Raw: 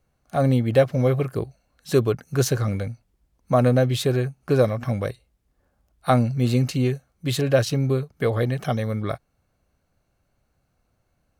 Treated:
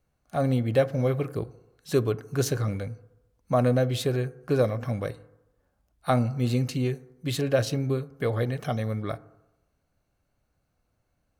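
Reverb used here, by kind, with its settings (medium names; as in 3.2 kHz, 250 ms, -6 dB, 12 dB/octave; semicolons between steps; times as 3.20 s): FDN reverb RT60 0.96 s, low-frequency decay 0.85×, high-frequency decay 0.3×, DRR 15 dB; trim -4.5 dB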